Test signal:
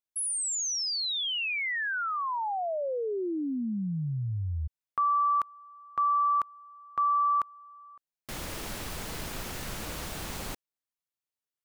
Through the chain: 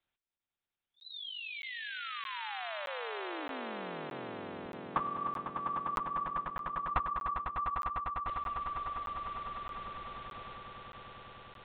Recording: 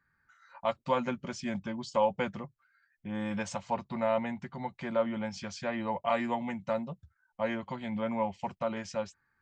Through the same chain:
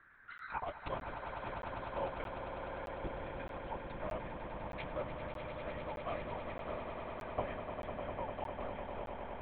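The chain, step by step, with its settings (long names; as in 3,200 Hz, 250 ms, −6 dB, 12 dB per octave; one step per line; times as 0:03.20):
gate with flip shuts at −35 dBFS, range −25 dB
high-pass filter 250 Hz 12 dB per octave
linear-prediction vocoder at 8 kHz whisper
echo that builds up and dies away 100 ms, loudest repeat 8, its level −9 dB
regular buffer underruns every 0.62 s, samples 512, zero, from 0:00.38
level +12.5 dB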